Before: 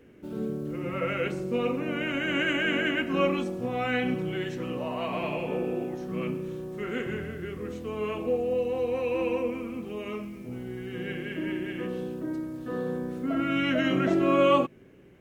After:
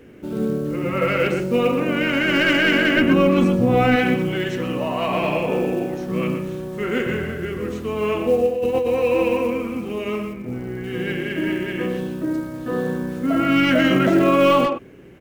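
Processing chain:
stylus tracing distortion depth 0.026 ms
0:08.45–0:08.88: compressor whose output falls as the input rises −30 dBFS, ratio −0.5
0:10.33–0:10.84: low-pass filter 2,500 Hz 24 dB per octave
floating-point word with a short mantissa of 4 bits
0:02.96–0:03.96: low-shelf EQ 470 Hz +9.5 dB
far-end echo of a speakerphone 120 ms, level −7 dB
boost into a limiter +15 dB
level −6 dB

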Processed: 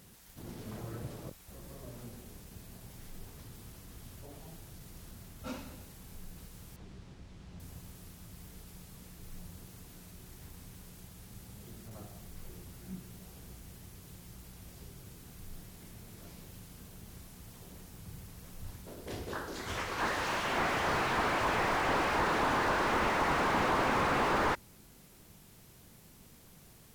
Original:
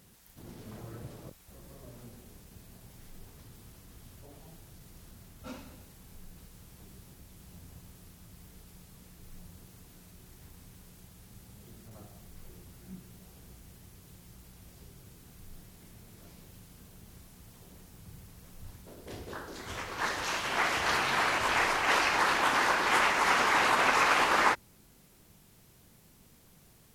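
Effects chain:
0:06.76–0:07.60: high-frequency loss of the air 120 metres
slew-rate limiting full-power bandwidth 34 Hz
level +2.5 dB

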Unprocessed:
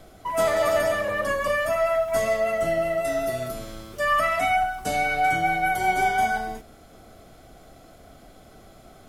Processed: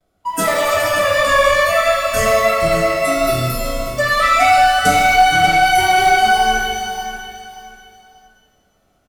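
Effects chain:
noise gate with hold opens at −42 dBFS
noise reduction from a noise print of the clip's start 19 dB
automatic gain control gain up to 4.5 dB
leveller curve on the samples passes 2
downward compressor, threshold −17 dBFS, peak gain reduction 6.5 dB
repeating echo 584 ms, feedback 28%, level −11 dB
reverb with rising layers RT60 1.2 s, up +12 semitones, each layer −8 dB, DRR 1 dB
level +3 dB

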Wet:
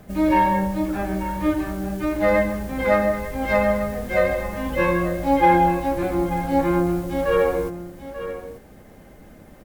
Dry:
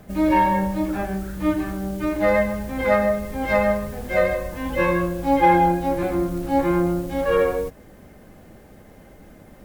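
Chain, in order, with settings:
single-tap delay 888 ms −12 dB

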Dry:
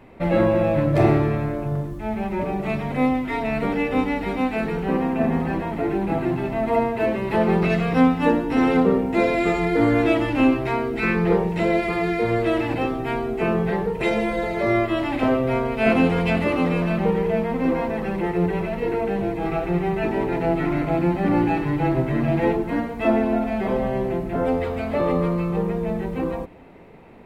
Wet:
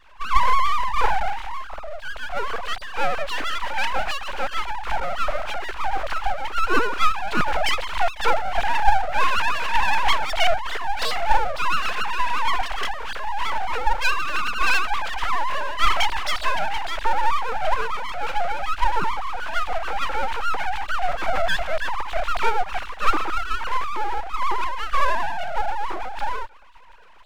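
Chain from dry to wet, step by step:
three sine waves on the formant tracks
full-wave rectification
pitch vibrato 11 Hz 87 cents
level +2.5 dB

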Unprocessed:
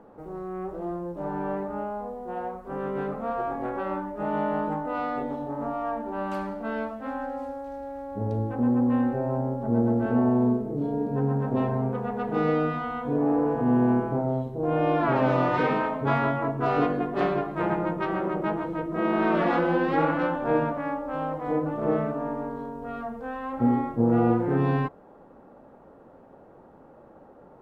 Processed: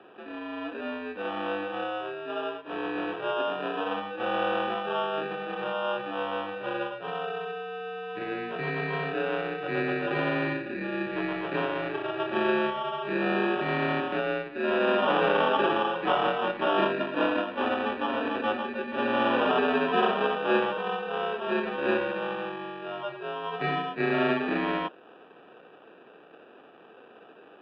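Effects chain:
sample-rate reduction 2,200 Hz, jitter 0%
single-sideband voice off tune −94 Hz 390–3,200 Hz
level +1.5 dB

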